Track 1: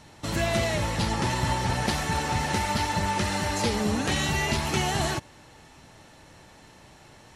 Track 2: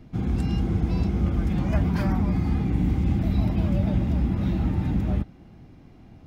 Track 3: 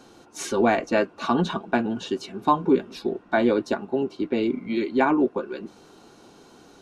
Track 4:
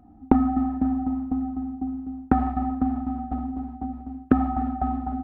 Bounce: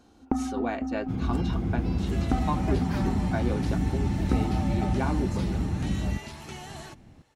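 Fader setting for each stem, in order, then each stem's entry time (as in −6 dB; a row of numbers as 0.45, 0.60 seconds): −15.0, −4.0, −11.0, −9.0 decibels; 1.75, 0.95, 0.00, 0.00 seconds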